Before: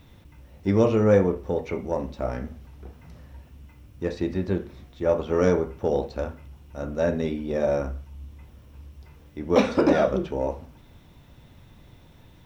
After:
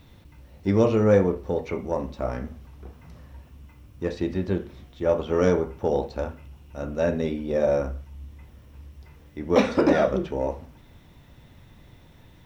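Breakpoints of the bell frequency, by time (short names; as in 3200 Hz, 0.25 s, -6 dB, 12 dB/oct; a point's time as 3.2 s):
bell +4.5 dB 0.21 oct
4300 Hz
from 1.68 s 1100 Hz
from 4.08 s 3100 Hz
from 5.62 s 860 Hz
from 6.3 s 2700 Hz
from 7.19 s 520 Hz
from 8.01 s 1900 Hz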